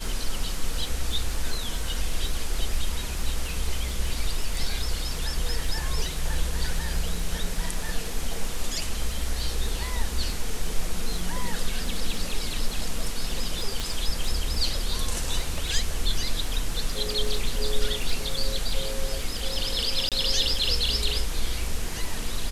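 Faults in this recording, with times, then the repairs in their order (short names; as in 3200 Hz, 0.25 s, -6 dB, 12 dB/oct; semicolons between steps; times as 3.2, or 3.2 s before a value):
crackle 23/s -30 dBFS
13.8 pop
20.09–20.12 gap 27 ms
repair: de-click; interpolate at 20.09, 27 ms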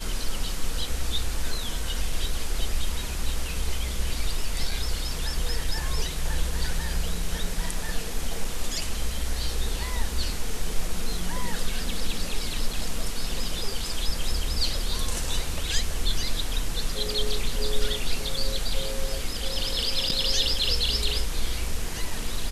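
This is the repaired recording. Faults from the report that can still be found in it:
13.8 pop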